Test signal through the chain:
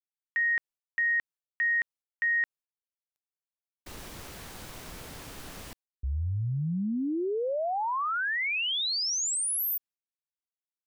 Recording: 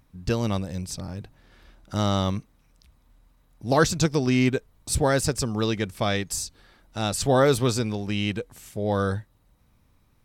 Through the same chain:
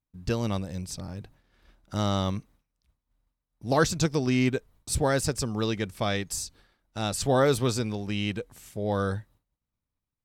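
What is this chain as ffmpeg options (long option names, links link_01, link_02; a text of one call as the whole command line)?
ffmpeg -i in.wav -af "agate=range=-33dB:threshold=-47dB:ratio=3:detection=peak,volume=-3dB" out.wav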